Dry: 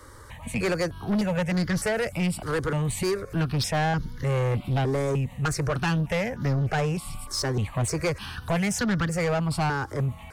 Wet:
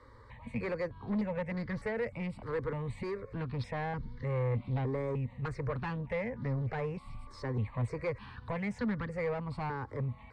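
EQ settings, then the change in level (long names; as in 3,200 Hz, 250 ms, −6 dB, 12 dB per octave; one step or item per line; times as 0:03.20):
EQ curve with evenly spaced ripples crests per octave 0.96, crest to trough 8 dB
dynamic equaliser 4,600 Hz, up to −7 dB, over −49 dBFS, Q 1.3
high-frequency loss of the air 210 metres
−9.0 dB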